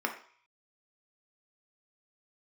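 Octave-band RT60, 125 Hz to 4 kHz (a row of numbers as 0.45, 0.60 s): 0.60, 0.35, 0.45, 0.55, 0.55, 0.55 s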